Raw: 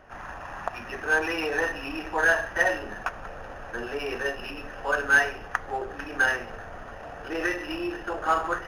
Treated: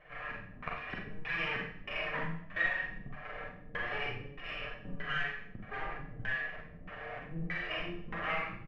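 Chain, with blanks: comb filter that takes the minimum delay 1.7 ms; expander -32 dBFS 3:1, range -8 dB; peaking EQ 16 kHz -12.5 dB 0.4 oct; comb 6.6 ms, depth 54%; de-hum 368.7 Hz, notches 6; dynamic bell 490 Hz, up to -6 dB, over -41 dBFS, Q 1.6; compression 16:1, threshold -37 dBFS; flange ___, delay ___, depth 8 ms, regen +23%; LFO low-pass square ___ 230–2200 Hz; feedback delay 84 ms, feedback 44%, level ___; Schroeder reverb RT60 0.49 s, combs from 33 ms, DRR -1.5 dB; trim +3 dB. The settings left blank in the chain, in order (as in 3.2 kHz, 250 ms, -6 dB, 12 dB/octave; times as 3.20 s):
0.68 Hz, 5.5 ms, 1.6 Hz, -16.5 dB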